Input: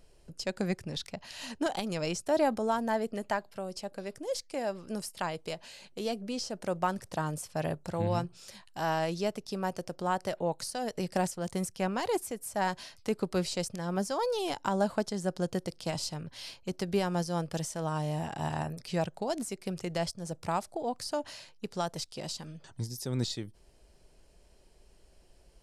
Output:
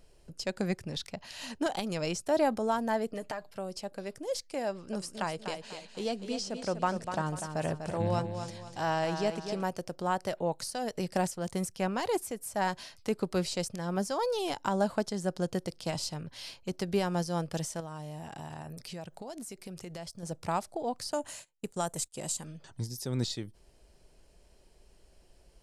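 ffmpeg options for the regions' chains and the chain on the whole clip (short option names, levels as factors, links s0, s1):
-filter_complex "[0:a]asettb=1/sr,asplit=3[s0][s1][s2];[s0]atrim=end=3.114[s3];[s1]atrim=start=3.11:end=3.51,asetpts=PTS-STARTPTS,afade=t=in:d=0.004:c=qsin,afade=t=out:st=0.396:d=0.004:c=qsin,acompressor=threshold=0.0251:ratio=6:attack=3.2:release=140:knee=1:detection=peak,aecho=1:1:6.6:0.53,atrim=end_sample=17640[s4];[s2]atrim=start=3.506[s5];[s3][s4]acrossfade=d=0.004:c1=hsin:c2=qsin[s6];[s6][s5]acrossfade=d=0.004:c1=qsin:c2=hsin,asettb=1/sr,asplit=3[s7][s8][s9];[s7]atrim=end=4.684[s10];[s8]atrim=start=4.68:end=9.63,asetpts=PTS-STARTPTS,afade=t=in:d=0.004:c=qsin,afade=t=out:st=4.946:d=0.004:c=qsin,lowpass=f=9700:w=0.5412,lowpass=f=9700:w=1.3066,aecho=1:1:246|492|738|984:0.398|0.143|0.0516|0.0186,atrim=end_sample=218295[s11];[s9]atrim=start=9.626[s12];[s10][s11]acrossfade=d=0.004:c1=hsin:c2=qsin[s13];[s13][s12]acrossfade=d=0.004:c1=qsin:c2=hsin,asettb=1/sr,asplit=3[s14][s15][s16];[s14]atrim=end=17.804[s17];[s15]atrim=start=17.8:end=20.23,asetpts=PTS-STARTPTS,afade=t=in:d=0.004:c=qsin,afade=t=out:st=2.426:d=0.004:c=qsin,highshelf=f=10000:g=7,acompressor=threshold=0.01:ratio=4:attack=3.2:release=140:knee=1:detection=peak[s18];[s16]atrim=start=20.226[s19];[s17][s18]acrossfade=d=0.004:c1=hsin:c2=qsin[s20];[s20][s19]acrossfade=d=0.004:c1=qsin:c2=hsin,asettb=1/sr,asplit=3[s21][s22][s23];[s21]atrim=end=21.124[s24];[s22]atrim=start=21.12:end=22.44,asetpts=PTS-STARTPTS,afade=t=in:d=0.004:c=qsin,afade=t=out:st=1.316:d=0.004:c=qsin,agate=range=0.0708:threshold=0.00355:ratio=16:release=100:detection=peak,highshelf=f=6200:t=q:w=3:g=7[s25];[s23]atrim=start=22.436[s26];[s24][s25]acrossfade=d=0.004:c1=hsin:c2=qsin[s27];[s27][s26]acrossfade=d=0.004:c1=qsin:c2=hsin"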